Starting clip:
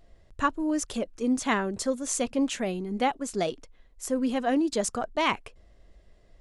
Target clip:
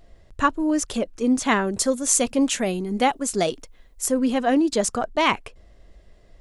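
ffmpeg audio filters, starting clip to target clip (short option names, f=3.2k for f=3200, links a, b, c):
-filter_complex "[0:a]asettb=1/sr,asplit=3[a][b][c];[a]atrim=end=1.674[d];[b]atrim=start=1.67:end=4.12,asetpts=PTS-STARTPTS,afade=t=in:d=0.004:c=qsin,afade=t=out:st=2.446:d=0.004:c=qsin,highshelf=f=7.1k:g=10[e];[c]atrim=start=4.116[f];[d][e]acrossfade=d=0.004:c1=hsin:c2=qsin[g];[g][f]acrossfade=d=0.004:c1=qsin:c2=hsin,volume=5.5dB"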